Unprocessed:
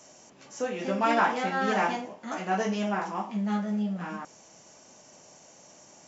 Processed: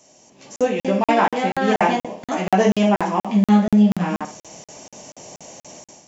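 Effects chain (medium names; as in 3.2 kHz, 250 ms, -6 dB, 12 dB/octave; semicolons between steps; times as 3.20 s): level rider gain up to 15 dB; peaking EQ 1.4 kHz -9 dB 0.65 oct; flutter echo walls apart 10.6 m, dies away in 0.3 s; dynamic bell 5.3 kHz, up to -6 dB, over -42 dBFS, Q 1.4; crackling interface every 0.24 s, samples 2048, zero, from 0.56 s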